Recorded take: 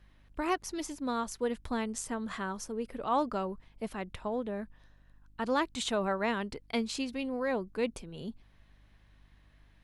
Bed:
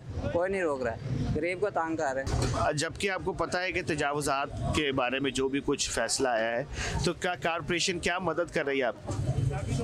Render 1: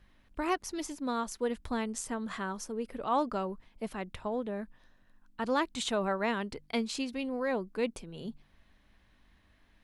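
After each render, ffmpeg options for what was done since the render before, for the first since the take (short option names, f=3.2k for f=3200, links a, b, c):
-af "bandreject=f=50:t=h:w=4,bandreject=f=100:t=h:w=4,bandreject=f=150:t=h:w=4"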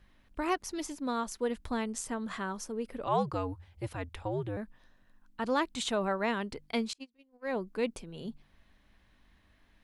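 -filter_complex "[0:a]asettb=1/sr,asplit=3[a][b][c];[a]atrim=end=3.054[d];[b]atrim=start=3.05:end=4.57,asetpts=PTS-STARTPTS,afade=t=in:d=0.004:c=qsin,afade=t=out:st=1.516:d=0.004:c=qsin,afreqshift=-100[e];[c]atrim=start=4.566[f];[d][e]acrossfade=d=0.004:c1=hsin:c2=qsin[g];[g][f]acrossfade=d=0.004:c1=qsin:c2=hsin,asettb=1/sr,asplit=3[h][i][j];[h]atrim=end=6.934[k];[i]atrim=start=6.93:end=7.56,asetpts=PTS-STARTPTS,afade=t=in:d=0.004:c=qsin,afade=t=out:st=0.626:d=0.004:c=qsin,agate=range=-35dB:threshold=-31dB:ratio=16:release=100:detection=peak[l];[j]atrim=start=7.556[m];[k][l]acrossfade=d=0.004:c1=hsin:c2=qsin[n];[n][m]acrossfade=d=0.004:c1=qsin:c2=hsin"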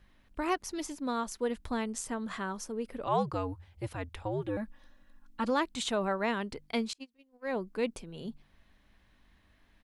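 -filter_complex "[0:a]asplit=3[a][b][c];[a]afade=t=out:st=4.41:d=0.02[d];[b]aecho=1:1:3.6:0.88,afade=t=in:st=4.41:d=0.02,afade=t=out:st=5.49:d=0.02[e];[c]afade=t=in:st=5.49:d=0.02[f];[d][e][f]amix=inputs=3:normalize=0"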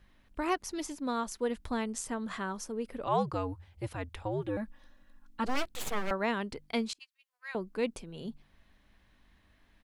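-filter_complex "[0:a]asettb=1/sr,asplit=3[a][b][c];[a]atrim=end=5.464[d];[b]atrim=start=5.46:end=6.11,asetpts=PTS-STARTPTS,afade=t=in:d=0.004:c=qsin,afade=t=out:st=0.646:d=0.004:c=qsin,aeval=exprs='abs(val(0))':c=same[e];[c]atrim=start=6.106[f];[d][e]acrossfade=d=0.004:c1=hsin:c2=qsin[g];[g][f]acrossfade=d=0.004:c1=qsin:c2=hsin,asettb=1/sr,asplit=3[h][i][j];[h]atrim=end=6.994[k];[i]atrim=start=6.99:end=7.55,asetpts=PTS-STARTPTS,afade=t=in:d=0.004:c=qsin,afade=t=out:st=0.556:d=0.004:c=qsin,highpass=f=1.3k:w=0.5412,highpass=f=1.3k:w=1.3066[l];[j]atrim=start=7.546[m];[k][l]acrossfade=d=0.004:c1=hsin:c2=qsin[n];[n][m]acrossfade=d=0.004:c1=qsin:c2=hsin"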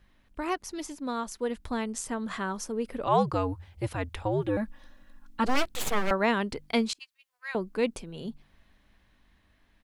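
-af "dynaudnorm=f=660:g=7:m=6dB"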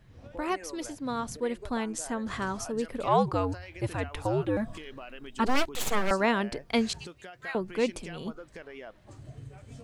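-filter_complex "[1:a]volume=-16dB[a];[0:a][a]amix=inputs=2:normalize=0"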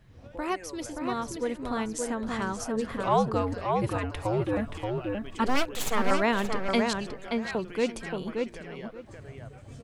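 -filter_complex "[0:a]asplit=2[a][b];[b]adelay=577,lowpass=f=2.6k:p=1,volume=-3.5dB,asplit=2[c][d];[d]adelay=577,lowpass=f=2.6k:p=1,volume=0.18,asplit=2[e][f];[f]adelay=577,lowpass=f=2.6k:p=1,volume=0.18[g];[a][c][e][g]amix=inputs=4:normalize=0"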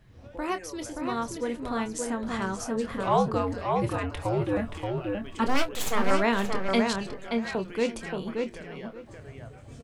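-filter_complex "[0:a]asplit=2[a][b];[b]adelay=26,volume=-9.5dB[c];[a][c]amix=inputs=2:normalize=0"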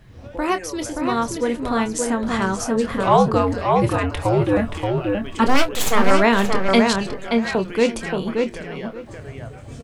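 -af "volume=9dB,alimiter=limit=-3dB:level=0:latency=1"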